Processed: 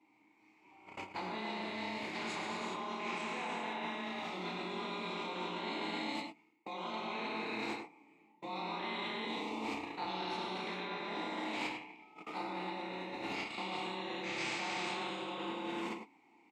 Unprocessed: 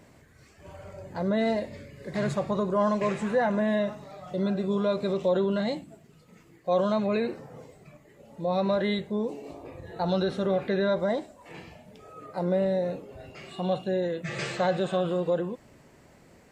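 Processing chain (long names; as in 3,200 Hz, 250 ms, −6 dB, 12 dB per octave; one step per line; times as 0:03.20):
every overlapping window played backwards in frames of 64 ms
low-shelf EQ 420 Hz −11 dB
mains-hum notches 50/100/150/200/250/300/350/400 Hz
in parallel at +3 dB: brickwall limiter −29 dBFS, peak gain reduction 9.5 dB
on the sum: reverb whose tail is shaped and stops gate 440 ms flat, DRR −3.5 dB
noise gate −37 dBFS, range −34 dB
single-tap delay 103 ms −13.5 dB
reversed playback
downward compressor 10 to 1, threshold −38 dBFS, peak gain reduction 20 dB
reversed playback
formant filter u
low-shelf EQ 200 Hz −8 dB
every bin compressed towards the loudest bin 2 to 1
level +17.5 dB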